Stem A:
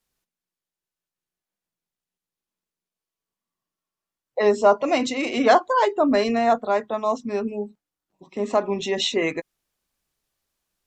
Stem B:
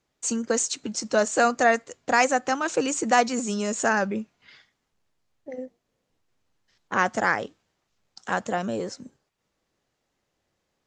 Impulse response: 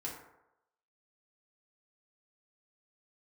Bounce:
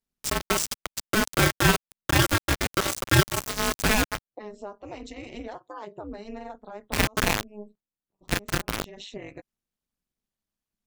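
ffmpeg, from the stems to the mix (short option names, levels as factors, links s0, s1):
-filter_complex "[0:a]acompressor=threshold=0.0562:ratio=6,volume=0.355[s0];[1:a]acrusher=bits=3:mix=0:aa=0.000001,aeval=exprs='val(0)*sgn(sin(2*PI*860*n/s))':c=same,volume=1.12,asplit=2[s1][s2];[s2]apad=whole_len=479021[s3];[s0][s3]sidechaincompress=threshold=0.0224:ratio=4:attack=10:release=215[s4];[s4][s1]amix=inputs=2:normalize=0,lowshelf=f=220:g=8.5,tremolo=f=210:d=0.947"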